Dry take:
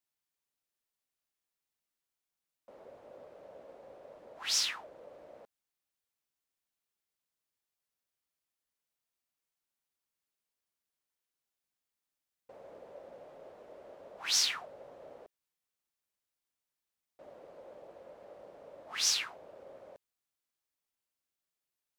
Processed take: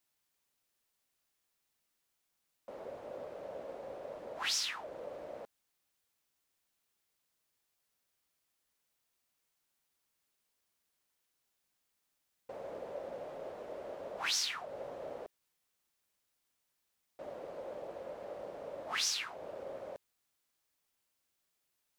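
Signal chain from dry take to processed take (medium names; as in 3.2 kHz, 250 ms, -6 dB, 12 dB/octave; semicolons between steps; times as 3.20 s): compression 4:1, threshold -41 dBFS, peak gain reduction 14 dB; trim +7.5 dB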